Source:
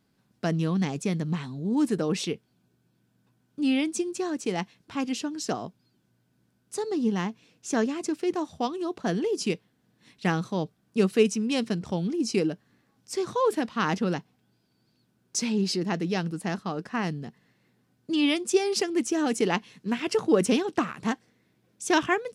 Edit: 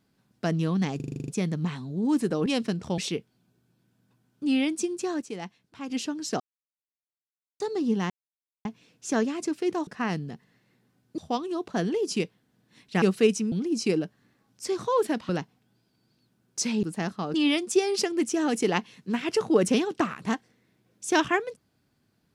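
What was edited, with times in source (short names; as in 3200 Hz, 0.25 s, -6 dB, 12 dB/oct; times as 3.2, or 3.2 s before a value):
0.96 stutter 0.04 s, 9 plays
4.38–5.06 gain -7.5 dB
5.56–6.76 mute
7.26 insert silence 0.55 s
10.32–10.98 cut
11.48–12 move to 2.14
13.77–14.06 cut
15.6–16.3 cut
16.81–18.12 move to 8.48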